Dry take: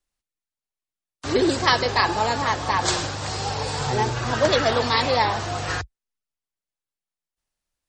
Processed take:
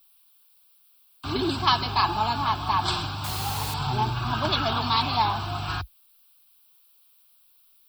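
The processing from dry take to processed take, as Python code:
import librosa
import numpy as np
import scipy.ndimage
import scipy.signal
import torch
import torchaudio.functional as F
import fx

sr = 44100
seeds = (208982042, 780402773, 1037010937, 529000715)

y = fx.dmg_noise_colour(x, sr, seeds[0], colour='blue', level_db=-58.0)
y = fx.fixed_phaser(y, sr, hz=1900.0, stages=6)
y = fx.quant_dither(y, sr, seeds[1], bits=6, dither='triangular', at=(3.24, 3.74))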